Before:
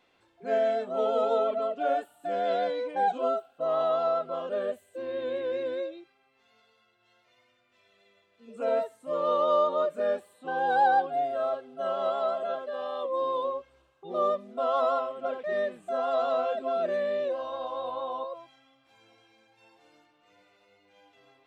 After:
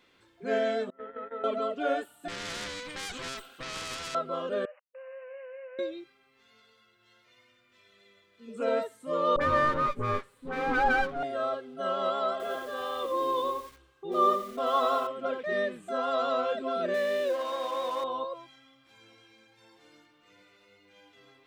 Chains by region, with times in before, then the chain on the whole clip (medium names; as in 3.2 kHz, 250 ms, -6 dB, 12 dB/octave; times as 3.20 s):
0.90–1.44 s: gate -26 dBFS, range -20 dB + four-pole ladder low-pass 2 kHz, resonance 80% + peaking EQ 750 Hz -8 dB 0.46 oct
2.28–4.15 s: tilt shelf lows -4 dB, about 660 Hz + valve stage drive 31 dB, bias 0.45 + spectrum-flattening compressor 2:1
4.65–5.79 s: send-on-delta sampling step -48 dBFS + compression 3:1, threshold -45 dBFS + brick-wall FIR band-pass 500–3000 Hz
9.36–11.23 s: comb filter that takes the minimum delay 7.3 ms + treble shelf 3 kHz -12 dB + phase dispersion highs, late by 48 ms, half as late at 1 kHz
12.31–15.07 s: comb 2.6 ms, depth 46% + bit-crushed delay 88 ms, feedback 35%, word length 8-bit, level -9.5 dB
16.94–18.04 s: companding laws mixed up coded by mu + high-pass 280 Hz
whole clip: peaking EQ 720 Hz -10 dB 0.74 oct; band-stop 2.7 kHz, Q 28; trim +5 dB